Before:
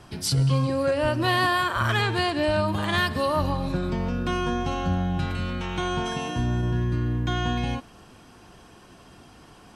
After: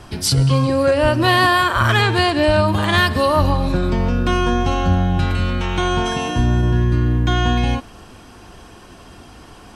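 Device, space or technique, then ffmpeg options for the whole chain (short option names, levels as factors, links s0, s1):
low shelf boost with a cut just above: -af "lowshelf=f=100:g=6,equalizer=f=150:t=o:w=0.74:g=-5,volume=2.51"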